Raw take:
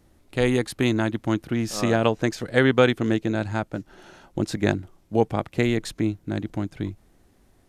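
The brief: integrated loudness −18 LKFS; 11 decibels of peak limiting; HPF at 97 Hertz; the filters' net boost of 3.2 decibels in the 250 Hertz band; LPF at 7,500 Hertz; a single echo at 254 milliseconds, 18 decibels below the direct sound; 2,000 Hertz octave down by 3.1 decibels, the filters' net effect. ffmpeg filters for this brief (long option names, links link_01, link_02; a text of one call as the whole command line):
ffmpeg -i in.wav -af "highpass=97,lowpass=7500,equalizer=frequency=250:width_type=o:gain=4,equalizer=frequency=2000:width_type=o:gain=-4,alimiter=limit=-13.5dB:level=0:latency=1,aecho=1:1:254:0.126,volume=8dB" out.wav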